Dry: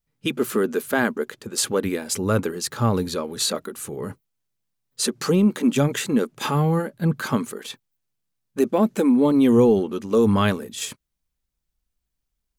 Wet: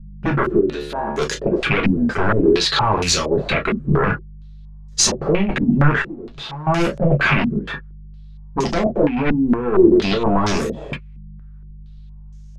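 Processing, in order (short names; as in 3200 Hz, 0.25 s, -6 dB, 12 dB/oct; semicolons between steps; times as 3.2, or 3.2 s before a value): rattling part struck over -31 dBFS, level -26 dBFS; 2.51–3.3 bell 99 Hz -> 420 Hz -13 dB 2.6 oct; negative-ratio compressor -21 dBFS, ratio -0.5; limiter -18 dBFS, peak gain reduction 11.5 dB; 0.59–1.18 resonator 72 Hz, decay 0.9 s, harmonics all, mix 90%; sine folder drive 7 dB, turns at -18 dBFS; buzz 50 Hz, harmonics 4, -45 dBFS -8 dB/oct; 6.02–6.67 tube stage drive 38 dB, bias 0.55; on a send at -2 dB: reverb, pre-delay 3 ms; on the sum: stepped low-pass 4.3 Hz 220–6300 Hz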